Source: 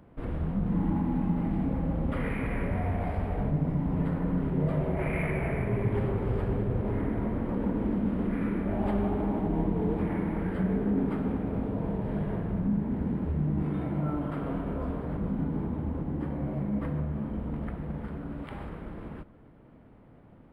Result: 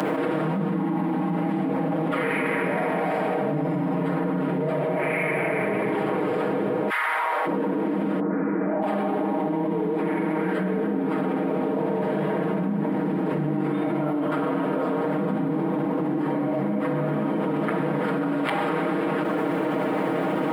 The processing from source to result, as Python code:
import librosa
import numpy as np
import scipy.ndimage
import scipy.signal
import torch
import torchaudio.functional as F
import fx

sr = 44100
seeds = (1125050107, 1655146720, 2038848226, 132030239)

y = fx.highpass(x, sr, hz=fx.line((6.88, 1400.0), (7.45, 650.0)), slope=24, at=(6.88, 7.45), fade=0.02)
y = fx.lowpass(y, sr, hz=fx.line((8.19, 1400.0), (8.81, 2000.0)), slope=24, at=(8.19, 8.81), fade=0.02)
y = scipy.signal.sosfilt(scipy.signal.bessel(8, 320.0, 'highpass', norm='mag', fs=sr, output='sos'), y)
y = y + 0.97 * np.pad(y, (int(6.4 * sr / 1000.0), 0))[:len(y)]
y = fx.env_flatten(y, sr, amount_pct=100)
y = F.gain(torch.from_numpy(y), 1.5).numpy()